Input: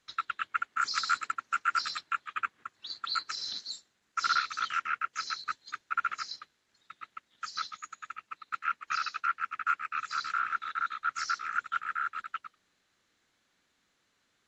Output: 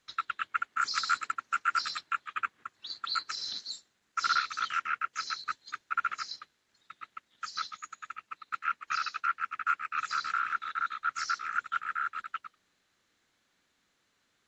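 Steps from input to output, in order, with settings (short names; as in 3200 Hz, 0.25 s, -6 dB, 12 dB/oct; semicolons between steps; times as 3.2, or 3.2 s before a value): 9.98–10.53 three-band squash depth 70%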